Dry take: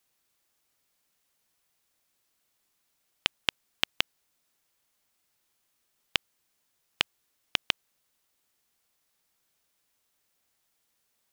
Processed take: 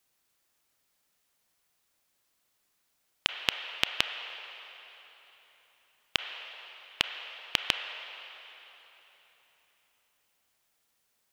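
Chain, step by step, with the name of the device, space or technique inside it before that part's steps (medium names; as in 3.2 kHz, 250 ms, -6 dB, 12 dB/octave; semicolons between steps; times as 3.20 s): filtered reverb send (on a send: high-pass 500 Hz 24 dB/octave + low-pass 3.2 kHz 12 dB/octave + reverberation RT60 3.8 s, pre-delay 27 ms, DRR 5 dB)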